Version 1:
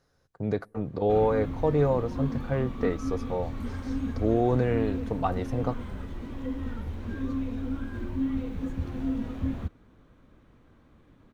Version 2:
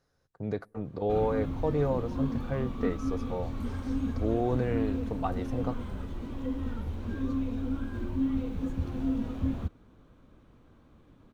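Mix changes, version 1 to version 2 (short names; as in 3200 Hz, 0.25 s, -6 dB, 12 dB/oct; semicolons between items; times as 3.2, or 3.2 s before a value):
speech -4.5 dB; background: add bell 1900 Hz -5 dB 0.53 oct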